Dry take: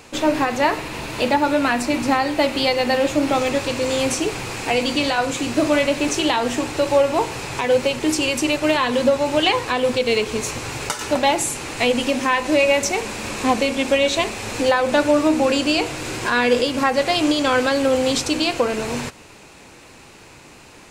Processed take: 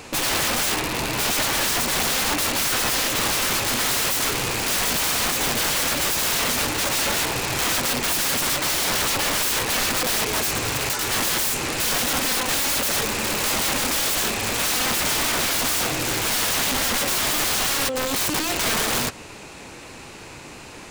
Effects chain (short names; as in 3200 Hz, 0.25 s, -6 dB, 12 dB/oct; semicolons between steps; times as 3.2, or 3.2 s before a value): 12.06–12.74 low shelf 190 Hz -9 dB; 17.88–18.52 negative-ratio compressor -27 dBFS, ratio -1; wrapped overs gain 22 dB; gain +4.5 dB